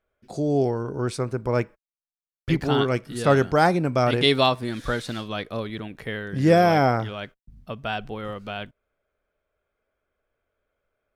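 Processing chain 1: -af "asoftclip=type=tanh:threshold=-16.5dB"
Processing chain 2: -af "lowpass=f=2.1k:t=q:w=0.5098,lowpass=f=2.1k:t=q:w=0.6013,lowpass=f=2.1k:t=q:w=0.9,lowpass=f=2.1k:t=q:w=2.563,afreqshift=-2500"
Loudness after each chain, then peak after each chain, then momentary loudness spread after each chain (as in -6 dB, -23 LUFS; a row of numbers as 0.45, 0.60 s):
-26.5, -21.0 LUFS; -16.5, -5.0 dBFS; 13, 16 LU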